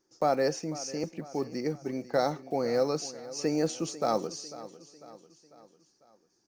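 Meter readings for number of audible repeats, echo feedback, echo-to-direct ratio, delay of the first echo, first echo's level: 4, 50%, -15.5 dB, 497 ms, -16.5 dB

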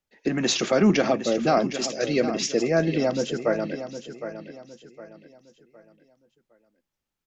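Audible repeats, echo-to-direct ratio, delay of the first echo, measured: 3, -10.5 dB, 761 ms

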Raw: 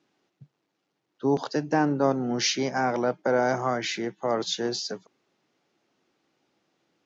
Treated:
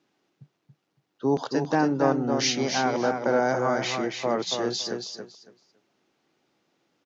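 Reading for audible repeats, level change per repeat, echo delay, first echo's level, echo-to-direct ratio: 3, -14.0 dB, 280 ms, -5.5 dB, -5.5 dB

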